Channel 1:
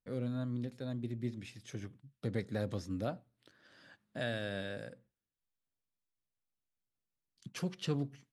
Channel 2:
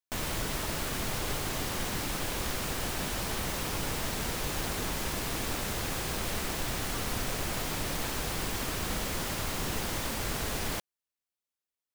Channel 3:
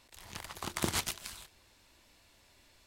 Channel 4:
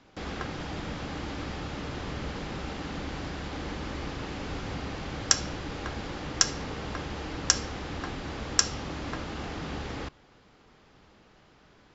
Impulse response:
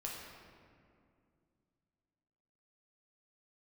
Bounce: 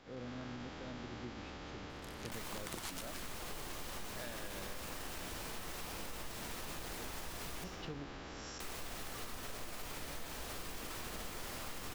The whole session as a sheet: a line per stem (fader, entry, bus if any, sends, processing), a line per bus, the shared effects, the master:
-6.0 dB, 0.00 s, no bus, no send, LPF 3800 Hz
-5.5 dB, 2.20 s, muted 7.64–8.6, bus A, send -4 dB, dry
-4.0 dB, 1.90 s, no bus, no send, dry
-15.0 dB, 0.00 s, bus A, no send, time blur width 0.331 s
bus A: 0.0 dB, negative-ratio compressor -43 dBFS, ratio -0.5; limiter -36.5 dBFS, peak gain reduction 8.5 dB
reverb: on, RT60 2.4 s, pre-delay 7 ms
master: bell 110 Hz -6 dB 1.9 oct; compressor, threshold -40 dBFS, peak gain reduction 10 dB

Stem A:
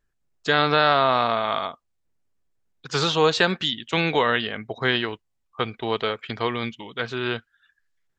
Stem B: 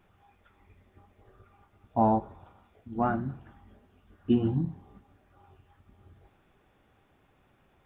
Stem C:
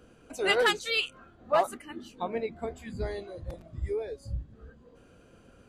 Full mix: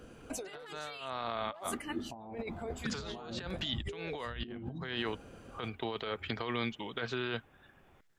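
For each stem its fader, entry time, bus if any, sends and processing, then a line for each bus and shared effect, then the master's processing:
-13.5 dB, 0.00 s, no send, three-band squash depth 40%
-4.0 dB, 0.15 s, no send, notches 60/120/180/240 Hz
-2.5 dB, 0.00 s, no send, dry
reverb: off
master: negative-ratio compressor -40 dBFS, ratio -1

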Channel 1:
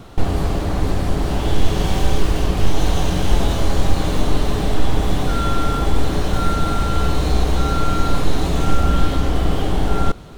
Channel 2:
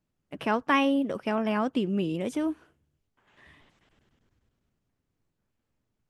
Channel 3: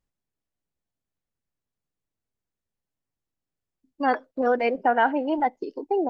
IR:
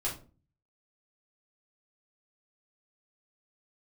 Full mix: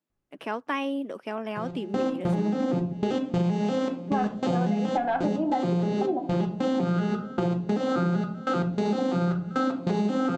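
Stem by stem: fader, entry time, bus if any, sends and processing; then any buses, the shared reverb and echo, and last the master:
+1.5 dB, 1.55 s, send -3 dB, arpeggiated vocoder minor triad, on F3, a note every 0.194 s; step gate "xx...xx..xxxxx" 193 bpm -24 dB
-3.5 dB, 0.00 s, no send, Chebyshev high-pass 290 Hz, order 2
+1.5 dB, 0.10 s, send -6.5 dB, wavefolder -14 dBFS; LPF 1500 Hz 12 dB/oct; notch comb 470 Hz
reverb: on, RT60 0.35 s, pre-delay 5 ms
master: compressor 10:1, threshold -22 dBFS, peak gain reduction 13.5 dB

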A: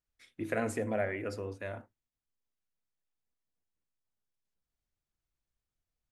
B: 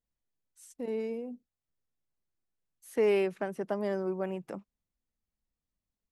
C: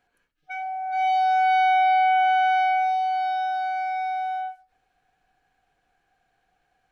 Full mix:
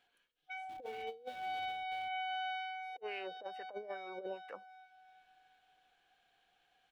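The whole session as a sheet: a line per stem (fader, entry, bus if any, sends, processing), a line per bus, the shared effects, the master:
1.41 s -20 dB -> 2.06 s -13 dB, 0.30 s, bus A, no send, no echo send, transient shaper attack -1 dB, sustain -6 dB; Schmitt trigger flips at -41 dBFS
-1.5 dB, 0.00 s, no bus, no send, no echo send, compressor 2:1, threshold -31 dBFS, peak gain reduction 5 dB; small resonant body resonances 490/2900 Hz, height 12 dB, ringing for 35 ms; LFO band-pass sine 2.3 Hz 430–2100 Hz
-7.5 dB, 0.00 s, bus A, no send, echo send -18.5 dB, compressor 8:1, threshold -26 dBFS, peak gain reduction 8.5 dB; auto duck -13 dB, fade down 0.85 s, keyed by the second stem
bus A: 0.0 dB, bell 3300 Hz +12.5 dB 0.67 oct; limiter -34.5 dBFS, peak gain reduction 5.5 dB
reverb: off
echo: feedback echo 0.361 s, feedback 51%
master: low shelf 200 Hz -10 dB; negative-ratio compressor -41 dBFS, ratio -0.5

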